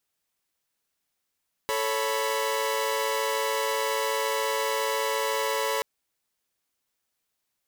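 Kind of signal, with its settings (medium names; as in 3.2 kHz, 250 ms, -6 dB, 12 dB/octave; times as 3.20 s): chord A4/C#5/B5 saw, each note -27 dBFS 4.13 s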